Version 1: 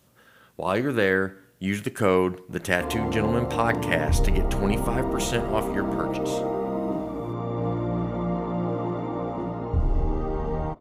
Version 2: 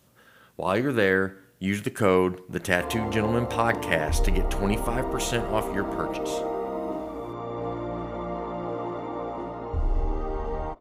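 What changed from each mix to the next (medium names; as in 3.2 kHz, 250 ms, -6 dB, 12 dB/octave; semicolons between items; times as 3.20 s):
background: add peaking EQ 150 Hz -12.5 dB 1.5 oct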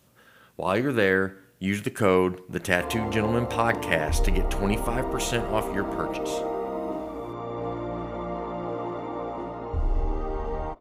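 master: add peaking EQ 2.5 kHz +2 dB 0.26 oct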